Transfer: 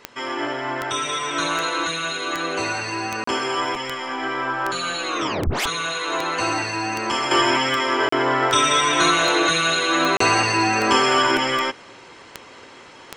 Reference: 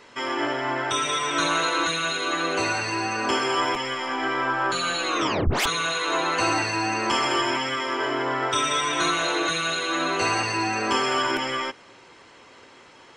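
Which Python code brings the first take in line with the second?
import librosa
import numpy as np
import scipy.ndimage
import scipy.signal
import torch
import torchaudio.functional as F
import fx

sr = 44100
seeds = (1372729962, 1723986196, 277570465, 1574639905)

y = fx.fix_declick_ar(x, sr, threshold=10.0)
y = fx.fix_interpolate(y, sr, at_s=(3.24, 8.09, 10.17), length_ms=34.0)
y = fx.fix_level(y, sr, at_s=7.31, step_db=-6.0)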